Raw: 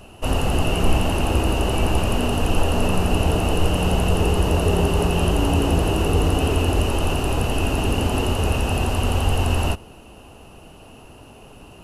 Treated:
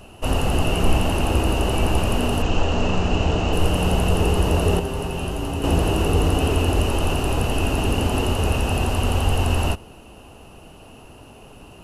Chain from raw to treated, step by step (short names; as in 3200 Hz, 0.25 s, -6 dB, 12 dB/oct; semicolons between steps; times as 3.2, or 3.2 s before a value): 2.42–3.53 elliptic low-pass 7100 Hz, stop band 80 dB; 4.79–5.64 resonator 130 Hz, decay 0.21 s, harmonics all, mix 70%